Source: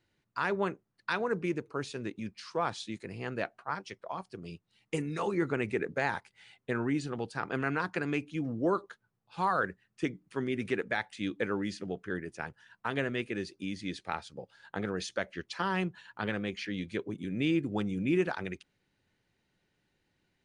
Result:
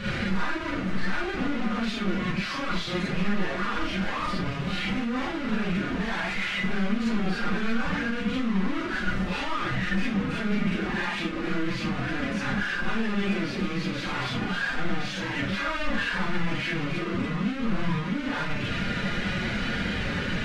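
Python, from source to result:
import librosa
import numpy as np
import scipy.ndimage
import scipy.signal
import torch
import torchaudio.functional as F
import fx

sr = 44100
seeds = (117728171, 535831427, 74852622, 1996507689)

y = np.sign(x) * np.sqrt(np.mean(np.square(x)))
y = scipy.signal.sosfilt(scipy.signal.butter(2, 2300.0, 'lowpass', fs=sr, output='sos'), y)
y = fx.peak_eq(y, sr, hz=560.0, db=-11.0, octaves=1.6)
y = fx.pitch_keep_formants(y, sr, semitones=8.5)
y = fx.rev_schroeder(y, sr, rt60_s=0.31, comb_ms=31, drr_db=-6.0)
y = y * librosa.db_to_amplitude(5.0)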